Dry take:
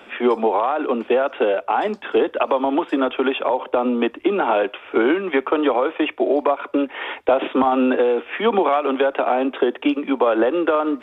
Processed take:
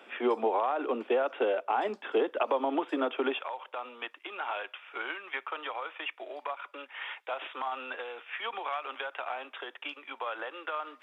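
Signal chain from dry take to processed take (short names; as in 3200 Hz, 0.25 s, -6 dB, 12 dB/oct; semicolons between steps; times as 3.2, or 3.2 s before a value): HPF 280 Hz 12 dB/oct, from 3.39 s 1200 Hz; gain -9 dB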